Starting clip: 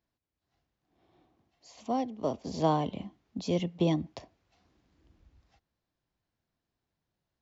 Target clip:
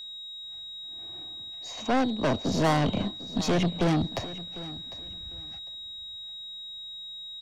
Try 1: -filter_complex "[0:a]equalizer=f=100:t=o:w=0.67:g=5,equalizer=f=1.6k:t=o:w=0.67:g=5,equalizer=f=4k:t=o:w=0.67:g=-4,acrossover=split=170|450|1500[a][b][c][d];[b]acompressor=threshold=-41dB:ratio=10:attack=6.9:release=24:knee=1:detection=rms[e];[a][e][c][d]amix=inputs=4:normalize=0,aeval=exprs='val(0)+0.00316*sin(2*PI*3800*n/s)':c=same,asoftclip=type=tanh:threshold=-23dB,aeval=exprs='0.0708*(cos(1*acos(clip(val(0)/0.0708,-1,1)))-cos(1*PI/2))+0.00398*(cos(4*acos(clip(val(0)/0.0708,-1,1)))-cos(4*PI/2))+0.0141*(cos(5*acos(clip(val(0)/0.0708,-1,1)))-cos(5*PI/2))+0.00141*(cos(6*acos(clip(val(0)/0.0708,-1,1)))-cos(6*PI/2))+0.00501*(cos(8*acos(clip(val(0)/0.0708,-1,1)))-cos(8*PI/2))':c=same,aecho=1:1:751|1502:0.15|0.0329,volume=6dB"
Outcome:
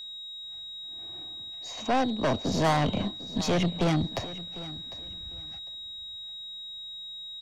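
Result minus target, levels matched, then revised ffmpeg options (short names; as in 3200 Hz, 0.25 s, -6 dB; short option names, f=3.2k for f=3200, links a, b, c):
compressor: peak gain reduction +8.5 dB
-filter_complex "[0:a]equalizer=f=100:t=o:w=0.67:g=5,equalizer=f=1.6k:t=o:w=0.67:g=5,equalizer=f=4k:t=o:w=0.67:g=-4,acrossover=split=170|450|1500[a][b][c][d];[b]acompressor=threshold=-31.5dB:ratio=10:attack=6.9:release=24:knee=1:detection=rms[e];[a][e][c][d]amix=inputs=4:normalize=0,aeval=exprs='val(0)+0.00316*sin(2*PI*3800*n/s)':c=same,asoftclip=type=tanh:threshold=-23dB,aeval=exprs='0.0708*(cos(1*acos(clip(val(0)/0.0708,-1,1)))-cos(1*PI/2))+0.00398*(cos(4*acos(clip(val(0)/0.0708,-1,1)))-cos(4*PI/2))+0.0141*(cos(5*acos(clip(val(0)/0.0708,-1,1)))-cos(5*PI/2))+0.00141*(cos(6*acos(clip(val(0)/0.0708,-1,1)))-cos(6*PI/2))+0.00501*(cos(8*acos(clip(val(0)/0.0708,-1,1)))-cos(8*PI/2))':c=same,aecho=1:1:751|1502:0.15|0.0329,volume=6dB"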